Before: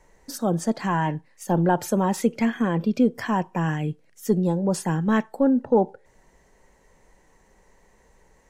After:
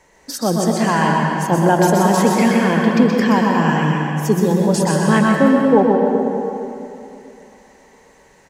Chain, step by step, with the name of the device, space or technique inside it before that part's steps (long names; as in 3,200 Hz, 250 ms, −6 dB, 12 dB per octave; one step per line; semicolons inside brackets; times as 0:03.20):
PA in a hall (high-pass filter 120 Hz 6 dB per octave; parametric band 3,400 Hz +5 dB 2.1 octaves; single-tap delay 126 ms −4.5 dB; convolution reverb RT60 2.9 s, pre-delay 110 ms, DRR 0.5 dB)
level +5 dB